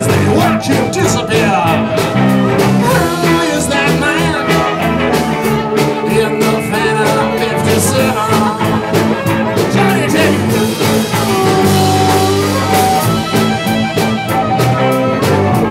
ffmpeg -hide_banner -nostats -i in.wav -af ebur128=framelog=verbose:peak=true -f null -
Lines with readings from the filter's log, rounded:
Integrated loudness:
  I:         -12.0 LUFS
  Threshold: -22.0 LUFS
Loudness range:
  LRA:         1.3 LU
  Threshold: -32.0 LUFS
  LRA low:   -12.6 LUFS
  LRA high:  -11.3 LUFS
True peak:
  Peak:       -1.1 dBFS